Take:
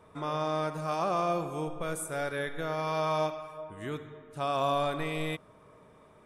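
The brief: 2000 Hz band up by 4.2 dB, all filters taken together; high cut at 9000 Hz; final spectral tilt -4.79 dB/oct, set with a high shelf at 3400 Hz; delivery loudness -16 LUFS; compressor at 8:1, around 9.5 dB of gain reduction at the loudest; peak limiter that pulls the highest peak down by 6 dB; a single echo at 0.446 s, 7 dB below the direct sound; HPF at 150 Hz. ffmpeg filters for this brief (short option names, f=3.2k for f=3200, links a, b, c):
-af "highpass=150,lowpass=9k,equalizer=f=2k:t=o:g=6.5,highshelf=f=3.4k:g=-3.5,acompressor=threshold=-34dB:ratio=8,alimiter=level_in=6dB:limit=-24dB:level=0:latency=1,volume=-6dB,aecho=1:1:446:0.447,volume=24dB"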